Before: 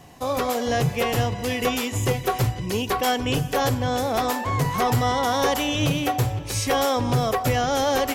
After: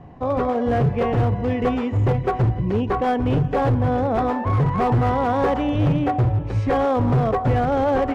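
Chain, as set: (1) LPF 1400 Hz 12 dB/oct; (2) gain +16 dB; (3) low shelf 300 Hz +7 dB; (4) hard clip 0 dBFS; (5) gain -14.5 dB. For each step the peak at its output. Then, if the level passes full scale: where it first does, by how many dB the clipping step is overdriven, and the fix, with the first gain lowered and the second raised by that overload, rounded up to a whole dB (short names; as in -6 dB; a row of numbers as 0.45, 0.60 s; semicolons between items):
-13.5, +2.5, +8.5, 0.0, -14.5 dBFS; step 2, 8.5 dB; step 2 +7 dB, step 5 -5.5 dB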